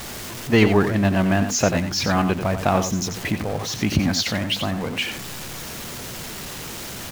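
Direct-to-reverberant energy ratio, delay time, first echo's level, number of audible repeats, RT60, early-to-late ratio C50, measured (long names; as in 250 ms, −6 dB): no reverb audible, 90 ms, −9.0 dB, 1, no reverb audible, no reverb audible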